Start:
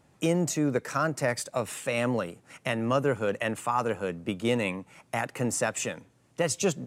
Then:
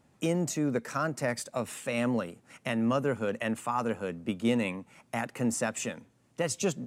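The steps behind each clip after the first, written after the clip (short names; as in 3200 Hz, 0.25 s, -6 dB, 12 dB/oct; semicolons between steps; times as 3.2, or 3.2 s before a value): bell 230 Hz +8 dB 0.24 oct; gain -3.5 dB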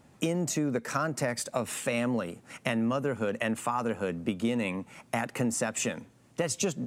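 compressor, threshold -32 dBFS, peak gain reduction 10 dB; gain +6.5 dB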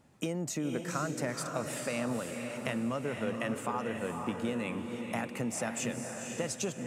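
diffused feedback echo 0.498 s, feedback 40%, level -4.5 dB; gain -5.5 dB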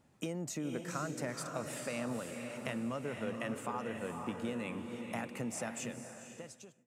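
ending faded out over 1.29 s; gain -4.5 dB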